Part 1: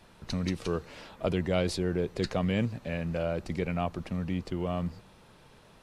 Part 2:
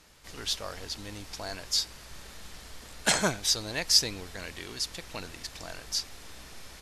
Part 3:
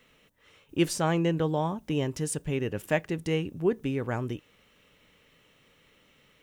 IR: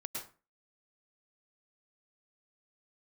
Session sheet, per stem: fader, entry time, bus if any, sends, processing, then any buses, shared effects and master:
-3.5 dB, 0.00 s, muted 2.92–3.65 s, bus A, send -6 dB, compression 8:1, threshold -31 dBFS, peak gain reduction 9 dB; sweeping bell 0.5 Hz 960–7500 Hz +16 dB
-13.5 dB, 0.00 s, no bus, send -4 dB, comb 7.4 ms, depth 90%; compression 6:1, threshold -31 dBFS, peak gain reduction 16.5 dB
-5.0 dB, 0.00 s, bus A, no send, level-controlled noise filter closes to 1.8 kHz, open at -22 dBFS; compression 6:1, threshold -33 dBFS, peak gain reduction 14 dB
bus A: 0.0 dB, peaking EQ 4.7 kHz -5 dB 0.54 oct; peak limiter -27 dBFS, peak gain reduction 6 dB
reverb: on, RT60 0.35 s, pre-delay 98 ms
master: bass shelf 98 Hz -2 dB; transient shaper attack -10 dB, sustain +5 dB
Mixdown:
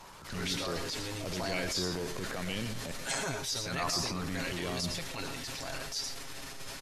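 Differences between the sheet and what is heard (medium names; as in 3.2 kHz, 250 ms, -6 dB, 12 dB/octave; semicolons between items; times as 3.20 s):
stem 2 -13.5 dB -> -2.0 dB; stem 3: muted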